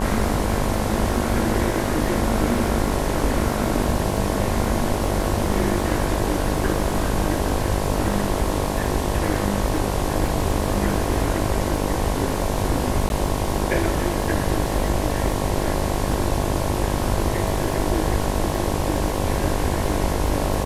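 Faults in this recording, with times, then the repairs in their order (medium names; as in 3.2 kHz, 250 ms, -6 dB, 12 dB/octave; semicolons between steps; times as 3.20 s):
buzz 50 Hz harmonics 22 -26 dBFS
crackle 58 per s -30 dBFS
13.09–13.10 s: dropout 11 ms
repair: de-click; de-hum 50 Hz, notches 22; interpolate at 13.09 s, 11 ms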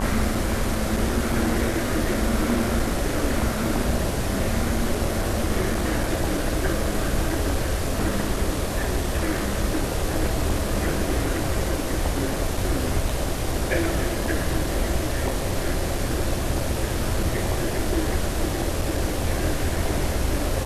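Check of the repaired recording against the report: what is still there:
nothing left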